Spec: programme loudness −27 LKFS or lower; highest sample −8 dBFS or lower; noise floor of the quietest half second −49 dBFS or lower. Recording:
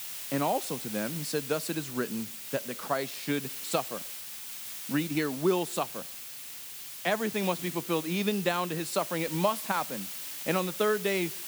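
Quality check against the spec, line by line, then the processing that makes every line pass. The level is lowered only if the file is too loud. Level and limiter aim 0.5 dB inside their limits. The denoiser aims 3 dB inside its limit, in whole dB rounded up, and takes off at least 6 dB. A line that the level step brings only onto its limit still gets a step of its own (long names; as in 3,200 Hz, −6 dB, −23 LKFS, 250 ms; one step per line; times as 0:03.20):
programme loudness −31.0 LKFS: in spec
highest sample −13.0 dBFS: in spec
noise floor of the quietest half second −43 dBFS: out of spec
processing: broadband denoise 9 dB, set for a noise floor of −43 dBFS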